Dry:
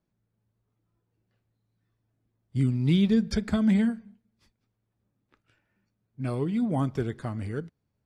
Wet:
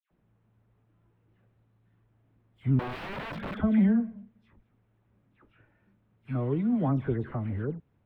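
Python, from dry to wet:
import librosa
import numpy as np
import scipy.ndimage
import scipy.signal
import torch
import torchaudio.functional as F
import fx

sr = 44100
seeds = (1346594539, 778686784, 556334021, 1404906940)

y = fx.law_mismatch(x, sr, coded='mu')
y = fx.notch(y, sr, hz=4600.0, q=5.1)
y = fx.dispersion(y, sr, late='lows', ms=109.0, hz=1800.0)
y = fx.overflow_wrap(y, sr, gain_db=28.0, at=(2.79, 3.6))
y = fx.air_absorb(y, sr, metres=490.0)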